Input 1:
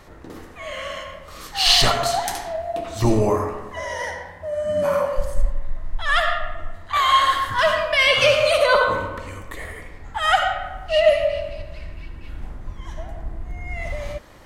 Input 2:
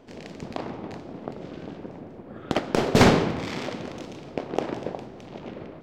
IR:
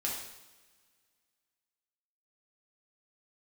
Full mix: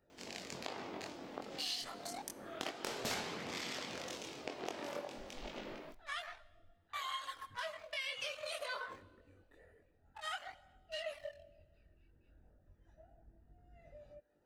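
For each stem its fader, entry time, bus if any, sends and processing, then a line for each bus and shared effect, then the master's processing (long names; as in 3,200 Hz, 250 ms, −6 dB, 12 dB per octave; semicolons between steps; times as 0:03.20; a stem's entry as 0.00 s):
−14.5 dB, 0.00 s, send −20.5 dB, adaptive Wiener filter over 41 samples; reverb reduction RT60 0.63 s; high-shelf EQ 9,800 Hz −5.5 dB
−3.0 dB, 0.10 s, send −18.5 dB, no processing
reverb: on, pre-delay 3 ms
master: spectral tilt +3.5 dB per octave; multi-voice chorus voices 2, 0.14 Hz, delay 22 ms, depth 2 ms; downward compressor 5 to 1, threshold −39 dBFS, peak gain reduction 18.5 dB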